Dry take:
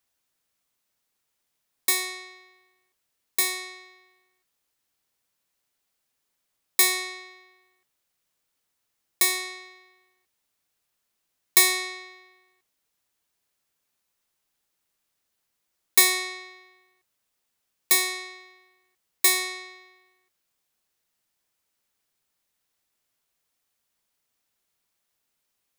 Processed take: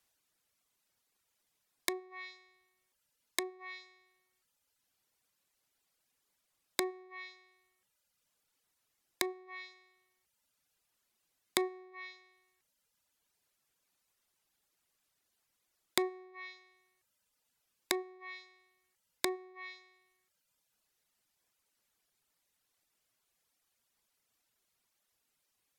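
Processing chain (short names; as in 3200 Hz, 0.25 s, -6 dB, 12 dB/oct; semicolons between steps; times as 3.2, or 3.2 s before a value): treble ducked by the level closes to 510 Hz, closed at -25 dBFS; reverb removal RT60 1.1 s; gain +1.5 dB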